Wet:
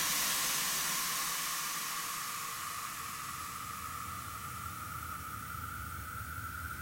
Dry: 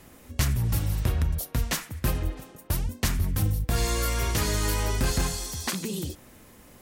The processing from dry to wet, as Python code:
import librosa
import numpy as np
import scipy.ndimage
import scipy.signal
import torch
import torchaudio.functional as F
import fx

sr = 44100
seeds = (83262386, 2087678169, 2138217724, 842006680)

y = fx.tilt_shelf(x, sr, db=-5.5, hz=970.0)
y = fx.spec_paint(y, sr, seeds[0], shape='rise', start_s=1.25, length_s=1.44, low_hz=470.0, high_hz=4400.0, level_db=-39.0)
y = fx.paulstretch(y, sr, seeds[1], factor=39.0, window_s=0.25, from_s=1.78)
y = fx.echo_split(y, sr, split_hz=1800.0, low_ms=219, high_ms=100, feedback_pct=52, wet_db=-7.5)
y = F.gain(torch.from_numpy(y), -6.5).numpy()